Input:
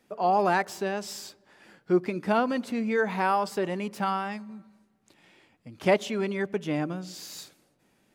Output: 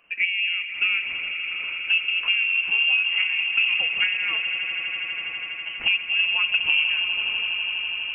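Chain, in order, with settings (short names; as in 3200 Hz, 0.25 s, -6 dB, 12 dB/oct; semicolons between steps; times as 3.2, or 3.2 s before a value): treble ducked by the level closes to 320 Hz, closed at -22 dBFS; in parallel at +1 dB: negative-ratio compressor -26 dBFS; on the sum: swelling echo 82 ms, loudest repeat 8, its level -14 dB; on a send at -16.5 dB: reverb RT60 0.70 s, pre-delay 28 ms; on the sum: inverted band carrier 3000 Hz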